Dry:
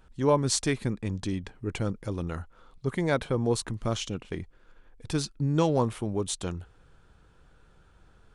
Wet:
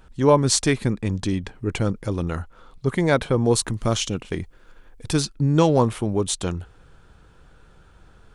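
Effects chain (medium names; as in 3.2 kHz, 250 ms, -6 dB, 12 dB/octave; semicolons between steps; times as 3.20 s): 3.47–5.21 s: treble shelf 6.4 kHz +6.5 dB; trim +7 dB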